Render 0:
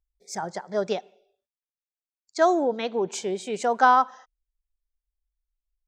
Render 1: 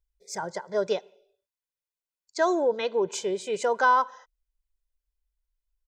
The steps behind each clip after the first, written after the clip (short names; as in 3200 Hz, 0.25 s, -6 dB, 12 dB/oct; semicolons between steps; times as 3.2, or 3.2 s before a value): comb 2 ms, depth 57%; in parallel at 0 dB: limiter -15 dBFS, peak gain reduction 8.5 dB; on the sum: gain -7.5 dB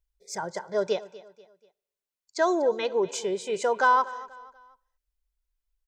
feedback echo 0.242 s, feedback 39%, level -18.5 dB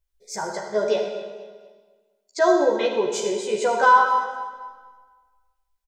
doubler 14 ms -2.5 dB; reverb RT60 1.4 s, pre-delay 10 ms, DRR 3 dB; gain +1 dB